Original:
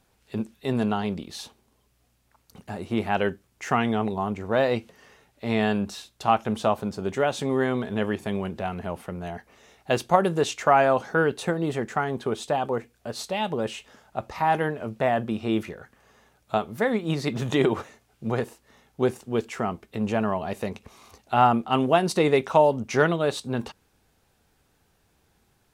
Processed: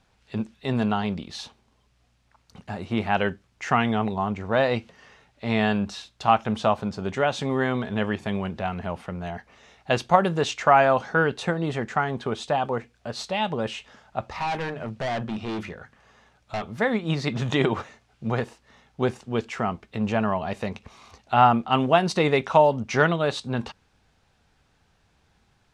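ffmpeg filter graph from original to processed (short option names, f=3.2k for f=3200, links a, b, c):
-filter_complex "[0:a]asettb=1/sr,asplit=3[a][b][c];[a]atrim=end=14.244[d];[b]atrim=start=14.24:end=16.66,asetpts=PTS-STARTPTS,afade=t=in:d=0.004:c=qsin,afade=t=out:st=2.416:d=0.004:c=qsin,bandreject=f=50:t=h:w=6,bandreject=f=100:t=h:w=6,bandreject=f=150:t=h:w=6,bandreject=f=200:t=h:w=6,bandreject=f=250:t=h:w=6,volume=26.5dB,asoftclip=hard,volume=-26.5dB[e];[c]atrim=start=16.656[f];[d][e]acrossfade=d=0.004:c1=hsin:c2=qsin[g];[g][f]acrossfade=d=0.004:c1=qsin:c2=hsin,lowpass=5.7k,equalizer=f=370:t=o:w=1.2:g=-5.5,volume=3dB"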